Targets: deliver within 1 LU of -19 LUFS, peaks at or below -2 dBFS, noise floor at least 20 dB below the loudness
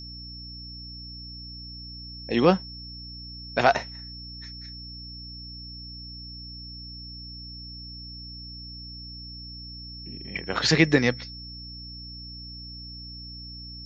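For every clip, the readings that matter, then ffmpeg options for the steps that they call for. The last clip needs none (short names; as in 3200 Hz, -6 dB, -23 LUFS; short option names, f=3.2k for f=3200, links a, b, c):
hum 60 Hz; harmonics up to 300 Hz; hum level -41 dBFS; steady tone 5400 Hz; tone level -40 dBFS; loudness -30.5 LUFS; peak -4.0 dBFS; loudness target -19.0 LUFS
-> -af "bandreject=f=60:t=h:w=4,bandreject=f=120:t=h:w=4,bandreject=f=180:t=h:w=4,bandreject=f=240:t=h:w=4,bandreject=f=300:t=h:w=4"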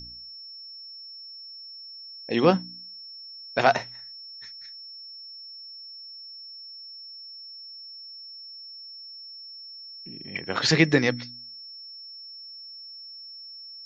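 hum none; steady tone 5400 Hz; tone level -40 dBFS
-> -af "bandreject=f=5.4k:w=30"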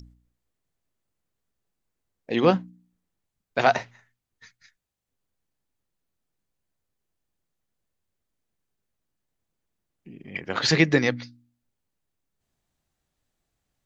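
steady tone none; loudness -23.0 LUFS; peak -4.0 dBFS; loudness target -19.0 LUFS
-> -af "volume=4dB,alimiter=limit=-2dB:level=0:latency=1"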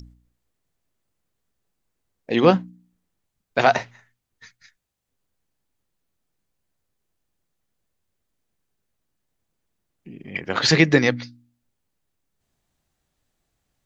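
loudness -19.5 LUFS; peak -2.0 dBFS; noise floor -78 dBFS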